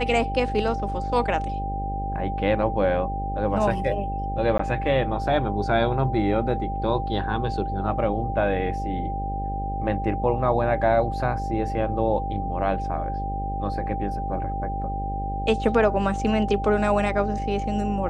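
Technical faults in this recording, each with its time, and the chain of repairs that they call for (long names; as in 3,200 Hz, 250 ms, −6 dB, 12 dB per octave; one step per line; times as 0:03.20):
mains buzz 50 Hz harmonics 12 −30 dBFS
whistle 790 Hz −29 dBFS
0:04.58–0:04.59: drop-out 14 ms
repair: hum removal 50 Hz, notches 12
notch filter 790 Hz, Q 30
repair the gap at 0:04.58, 14 ms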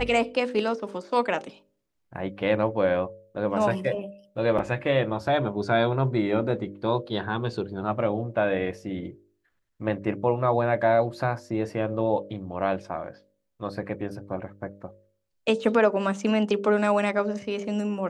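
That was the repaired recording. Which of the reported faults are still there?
none of them is left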